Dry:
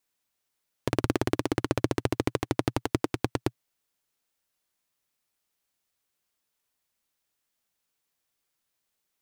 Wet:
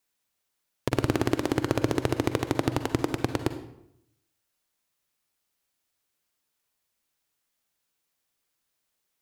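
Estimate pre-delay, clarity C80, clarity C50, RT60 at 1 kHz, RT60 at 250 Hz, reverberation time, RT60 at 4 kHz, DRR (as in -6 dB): 40 ms, 12.5 dB, 10.0 dB, 0.75 s, 0.90 s, 0.75 s, 0.55 s, 9.0 dB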